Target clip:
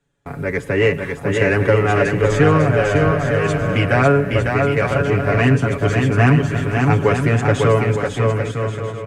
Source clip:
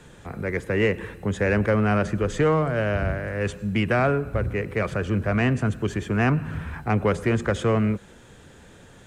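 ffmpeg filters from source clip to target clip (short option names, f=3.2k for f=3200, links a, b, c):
-filter_complex "[0:a]agate=range=-29dB:threshold=-40dB:ratio=16:detection=peak,aecho=1:1:7.1:0.83,asplit=2[a][b];[b]aecho=0:1:550|907.5|1140|1291|1389:0.631|0.398|0.251|0.158|0.1[c];[a][c]amix=inputs=2:normalize=0,volume=3.5dB"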